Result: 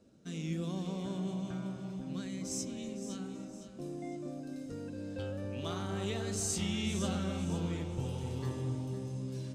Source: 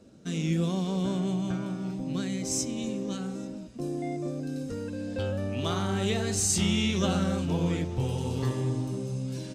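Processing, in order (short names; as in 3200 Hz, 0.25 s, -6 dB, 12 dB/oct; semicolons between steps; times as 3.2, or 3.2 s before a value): echo with dull and thin repeats by turns 0.255 s, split 1200 Hz, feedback 62%, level -7 dB; gain -9 dB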